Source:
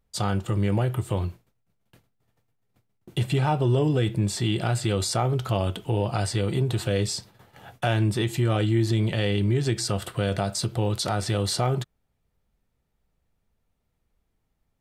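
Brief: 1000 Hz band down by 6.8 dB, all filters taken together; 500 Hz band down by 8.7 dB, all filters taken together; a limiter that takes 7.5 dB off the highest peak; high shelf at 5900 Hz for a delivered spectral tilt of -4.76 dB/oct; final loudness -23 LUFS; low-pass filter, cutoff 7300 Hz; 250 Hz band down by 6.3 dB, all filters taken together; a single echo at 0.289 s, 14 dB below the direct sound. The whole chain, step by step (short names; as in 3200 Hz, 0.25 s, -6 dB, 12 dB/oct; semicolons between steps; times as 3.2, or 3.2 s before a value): LPF 7300 Hz; bell 250 Hz -7 dB; bell 500 Hz -7.5 dB; bell 1000 Hz -6 dB; high shelf 5900 Hz +5 dB; limiter -20 dBFS; echo 0.289 s -14 dB; gain +7 dB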